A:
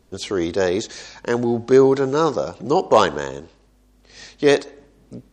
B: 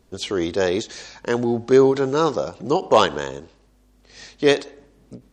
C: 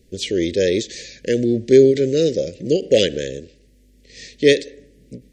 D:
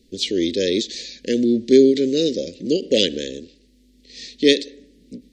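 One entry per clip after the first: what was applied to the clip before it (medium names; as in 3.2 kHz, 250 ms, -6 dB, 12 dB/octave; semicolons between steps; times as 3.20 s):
dynamic bell 3.1 kHz, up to +5 dB, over -40 dBFS, Q 2.2; endings held to a fixed fall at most 250 dB/s; trim -1 dB
elliptic band-stop 540–1900 Hz, stop band 50 dB; trim +4 dB
ten-band graphic EQ 125 Hz -10 dB, 250 Hz +10 dB, 1 kHz -11 dB, 4 kHz +10 dB; trim -4 dB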